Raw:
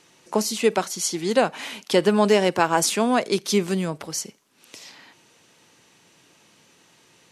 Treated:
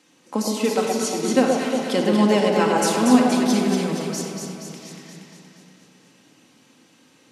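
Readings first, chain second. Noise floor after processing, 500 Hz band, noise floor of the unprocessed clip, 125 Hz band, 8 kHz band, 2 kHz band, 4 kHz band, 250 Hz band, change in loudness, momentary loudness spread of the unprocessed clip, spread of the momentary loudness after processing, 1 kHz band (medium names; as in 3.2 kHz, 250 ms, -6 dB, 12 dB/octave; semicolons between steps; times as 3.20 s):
-57 dBFS, +0.5 dB, -58 dBFS, +2.5 dB, -1.0 dB, -0.5 dB, -0.5 dB, +6.0 dB, +2.0 dB, 10 LU, 16 LU, +1.0 dB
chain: high-pass 89 Hz; peaking EQ 260 Hz +8.5 dB 0.43 oct; echo whose repeats swap between lows and highs 118 ms, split 1 kHz, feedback 77%, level -2.5 dB; simulated room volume 3300 m³, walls mixed, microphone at 2.1 m; trim -5 dB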